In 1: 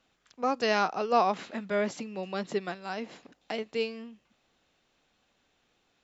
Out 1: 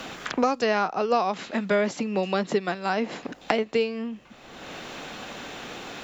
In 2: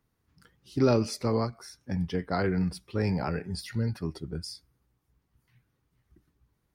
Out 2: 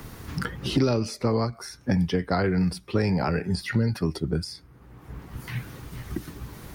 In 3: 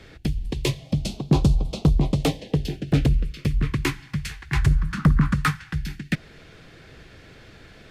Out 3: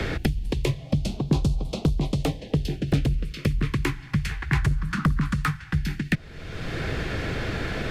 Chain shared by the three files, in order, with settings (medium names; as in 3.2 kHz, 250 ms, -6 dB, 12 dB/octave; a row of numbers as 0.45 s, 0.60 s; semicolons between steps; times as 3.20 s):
three bands compressed up and down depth 100%; normalise loudness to -27 LUFS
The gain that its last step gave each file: +5.0 dB, +4.5 dB, -2.5 dB